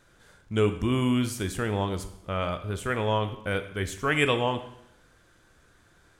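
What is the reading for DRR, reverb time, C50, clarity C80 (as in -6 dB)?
9.0 dB, 0.80 s, 11.5 dB, 14.0 dB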